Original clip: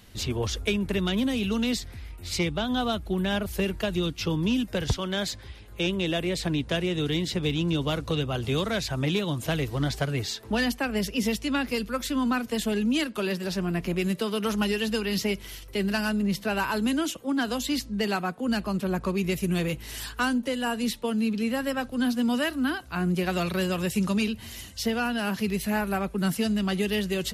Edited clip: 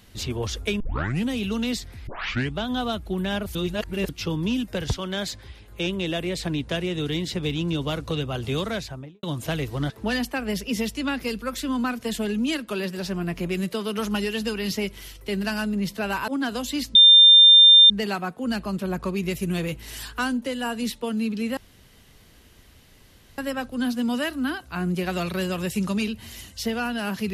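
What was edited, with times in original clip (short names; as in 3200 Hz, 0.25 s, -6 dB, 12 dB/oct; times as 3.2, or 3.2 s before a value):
0.8 tape start 0.49 s
2.07 tape start 0.46 s
3.55–4.09 reverse
8.66–9.23 studio fade out
9.9–10.37 cut
16.75–17.24 cut
17.91 add tone 3600 Hz -8 dBFS 0.95 s
21.58 insert room tone 1.81 s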